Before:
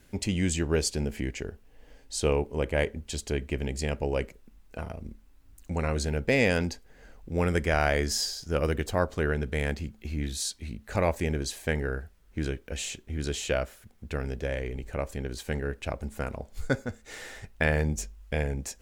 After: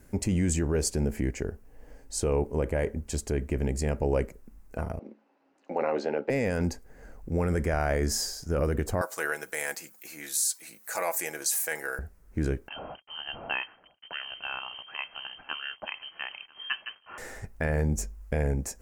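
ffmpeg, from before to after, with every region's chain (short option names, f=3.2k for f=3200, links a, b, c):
-filter_complex "[0:a]asettb=1/sr,asplit=3[a][b][c];[a]atrim=end=4.994[d];[b]atrim=start=4.99:end=6.3,asetpts=PTS-STARTPTS,afade=t=in:d=0.004:c=qsin,afade=t=out:st=1.306:d=0.004:c=qsin,highpass=f=270:w=0.5412,highpass=f=270:w=1.3066,equalizer=f=550:t=q:w=4:g=7,equalizer=f=810:t=q:w=4:g=8,equalizer=f=2.8k:t=q:w=4:g=6,lowpass=f=4.3k:w=0.5412,lowpass=f=4.3k:w=1.3066,asplit=2[e][f];[f]adelay=14,volume=-12.5dB[g];[e][g]amix=inputs=2:normalize=0,atrim=end_sample=57771[h];[c]atrim=start=6.296[i];[d][h]acrossfade=d=0.004:c1=hsin:c2=qsin[j];[j][i]acrossfade=d=0.004:c1=qsin:c2=hsin,asettb=1/sr,asplit=3[k][l][m];[k]atrim=end=9.014[n];[l]atrim=start=9.01:end=11.99,asetpts=PTS-STARTPTS,afade=t=in:d=0.004:c=qsin,afade=t=out:st=2.976:d=0.004:c=qsin,highpass=780,aemphasis=mode=production:type=75kf,aecho=1:1:6.1:0.53,atrim=end_sample=131418[o];[m]atrim=start=11.986[p];[n][o]acrossfade=d=0.004:c1=hsin:c2=qsin[q];[q][p]acrossfade=d=0.004:c1=qsin:c2=hsin,asettb=1/sr,asplit=3[r][s][t];[r]atrim=end=12.684[u];[s]atrim=start=12.68:end=17.18,asetpts=PTS-STARTPTS,afade=t=in:d=0.004:c=qsin,afade=t=out:st=4.496:d=0.004:c=qsin,acrusher=bits=7:mix=0:aa=0.5,aecho=1:1:992:0.0668,atrim=end_sample=198450,lowpass=f=2.7k:t=q:w=0.5098,lowpass=f=2.7k:t=q:w=0.6013,lowpass=f=2.7k:t=q:w=0.9,lowpass=f=2.7k:t=q:w=2.563,afreqshift=-3200[v];[t]atrim=start=17.176[w];[u][v]acrossfade=d=0.004:c1=hsin:c2=qsin[x];[x][w]acrossfade=d=0.004:c1=qsin:c2=hsin,equalizer=f=3.4k:w=1.2:g=-14,alimiter=limit=-21dB:level=0:latency=1:release=24,volume=4dB"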